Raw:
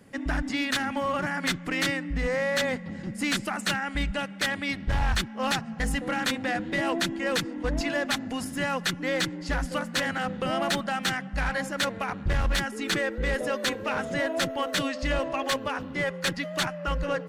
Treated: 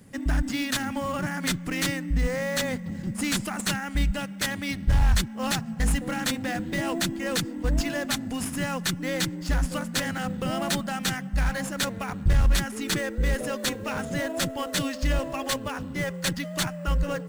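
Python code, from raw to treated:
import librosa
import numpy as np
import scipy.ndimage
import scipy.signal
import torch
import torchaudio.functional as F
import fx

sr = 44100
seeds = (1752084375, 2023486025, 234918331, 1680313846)

p1 = fx.bass_treble(x, sr, bass_db=9, treble_db=12)
p2 = fx.sample_hold(p1, sr, seeds[0], rate_hz=8100.0, jitter_pct=0)
p3 = p1 + (p2 * 10.0 ** (-7.0 / 20.0))
y = p3 * 10.0 ** (-6.0 / 20.0)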